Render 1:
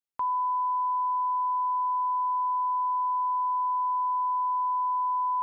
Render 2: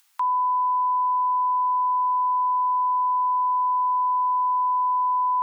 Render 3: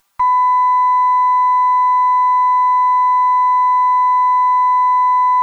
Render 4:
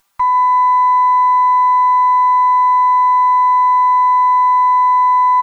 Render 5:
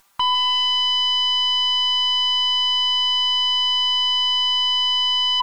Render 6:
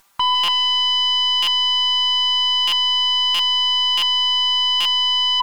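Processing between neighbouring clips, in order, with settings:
steep high-pass 840 Hz 36 dB/oct; upward compressor, threshold -48 dBFS; gain +5.5 dB
minimum comb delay 5.1 ms; bell 1000 Hz +10 dB 1.3 oct
echo 0.15 s -19 dB; on a send at -18.5 dB: reverb RT60 2.3 s, pre-delay 44 ms
sine folder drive 8 dB, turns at -7 dBFS; gain -8 dB
stuck buffer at 0.43/1.42/2.67/3.34/3.97/4.8, samples 256, times 8; gain +1.5 dB

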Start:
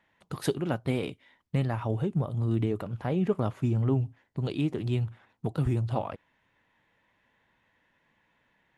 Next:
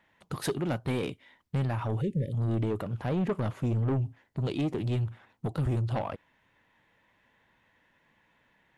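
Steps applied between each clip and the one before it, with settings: soft clip -26 dBFS, distortion -11 dB; spectral delete 2.01–2.33, 590–1700 Hz; gain +2.5 dB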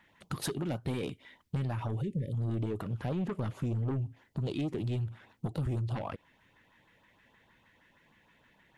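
compressor 3:1, threshold -37 dBFS, peak gain reduction 8.5 dB; LFO notch saw up 6.4 Hz 430–2500 Hz; gain +4 dB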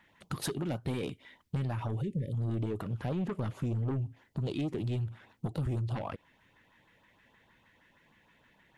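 nothing audible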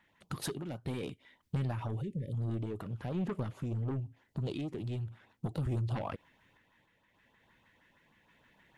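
random-step tremolo

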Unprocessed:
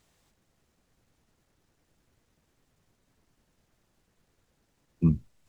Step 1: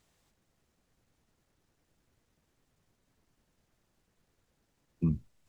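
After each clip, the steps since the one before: limiter -16 dBFS, peak gain reduction 3.5 dB; gain -3.5 dB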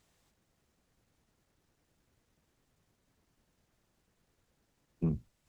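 one diode to ground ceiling -27.5 dBFS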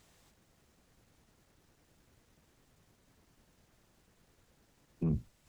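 limiter -31.5 dBFS, peak gain reduction 10.5 dB; gain +7 dB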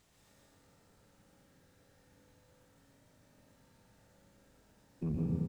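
echo 0.119 s -5.5 dB; reverb RT60 2.4 s, pre-delay 0.136 s, DRR -4.5 dB; gain -4.5 dB

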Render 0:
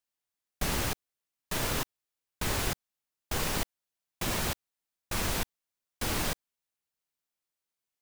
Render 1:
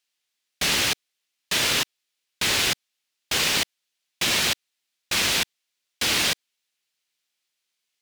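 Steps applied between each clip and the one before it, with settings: weighting filter D; gain +4 dB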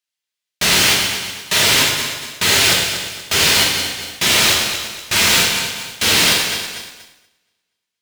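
regenerating reverse delay 0.119 s, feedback 64%, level -11 dB; sample leveller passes 3; non-linear reverb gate 0.26 s falling, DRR -1.5 dB; gain -2.5 dB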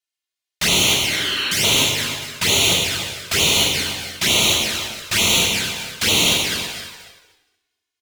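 spectral repair 1.09–1.61, 250–4400 Hz before; envelope flanger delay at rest 2.8 ms, full sweep at -12 dBFS; outdoor echo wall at 51 m, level -10 dB

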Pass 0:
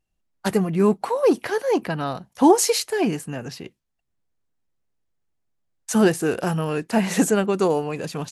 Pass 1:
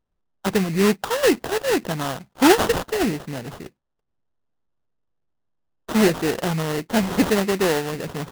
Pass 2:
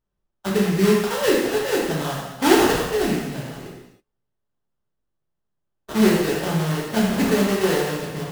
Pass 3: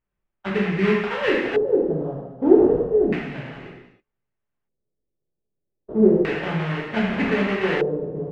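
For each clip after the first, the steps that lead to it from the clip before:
sample-rate reducer 2300 Hz, jitter 20%
non-linear reverb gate 0.35 s falling, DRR -4.5 dB; gain -6 dB
LFO low-pass square 0.32 Hz 460–2300 Hz; gain -3 dB

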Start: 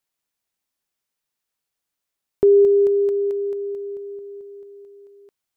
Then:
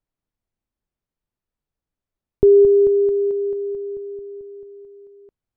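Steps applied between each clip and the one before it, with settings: tilt -4.5 dB/oct; gain -4 dB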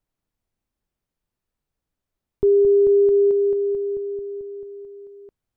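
limiter -15 dBFS, peak gain reduction 11 dB; gain +3.5 dB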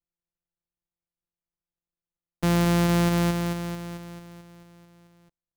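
sample sorter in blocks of 256 samples; upward expander 1.5:1, over -33 dBFS; gain -6 dB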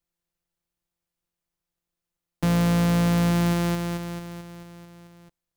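overloaded stage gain 27 dB; gain +7.5 dB

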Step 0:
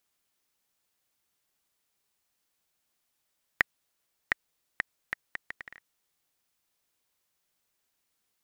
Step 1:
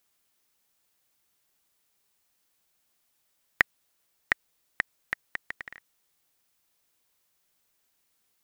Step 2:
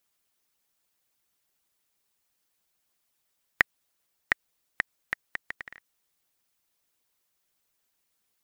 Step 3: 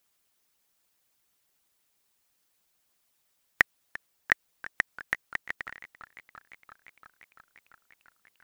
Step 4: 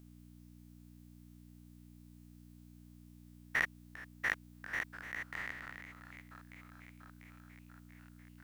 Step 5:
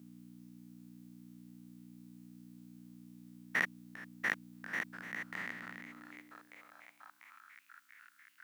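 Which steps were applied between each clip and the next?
high shelf 11000 Hz +3.5 dB; gain +3.5 dB
harmonic-percussive split harmonic -9 dB
in parallel at -5 dB: overloaded stage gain 17 dB; on the sum: warbling echo 0.344 s, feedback 79%, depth 101 cents, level -19 dB; gain -1 dB
stepped spectrum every 0.1 s; buzz 60 Hz, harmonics 5, -59 dBFS -2 dB/oct; gain +2 dB
high-pass sweep 200 Hz -> 1500 Hz, 5.73–7.61

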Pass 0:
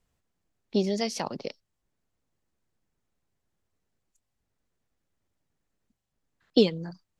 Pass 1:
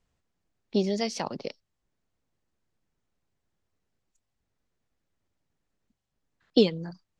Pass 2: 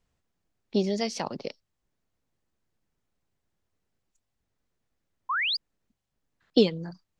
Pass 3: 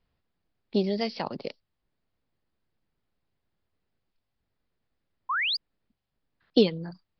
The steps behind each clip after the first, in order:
LPF 7500 Hz
painted sound rise, 5.29–5.57, 960–5100 Hz -27 dBFS
downsampling 11025 Hz

